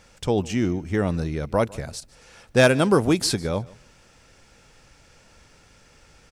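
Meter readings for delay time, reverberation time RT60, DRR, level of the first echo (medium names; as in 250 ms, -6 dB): 151 ms, no reverb, no reverb, -22.5 dB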